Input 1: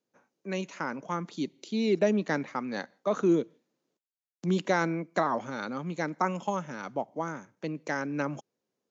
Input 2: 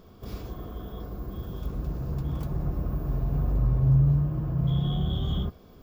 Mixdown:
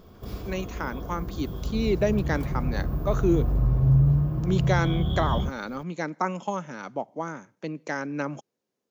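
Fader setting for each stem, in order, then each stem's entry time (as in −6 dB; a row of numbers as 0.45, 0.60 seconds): +1.0, +1.5 decibels; 0.00, 0.00 seconds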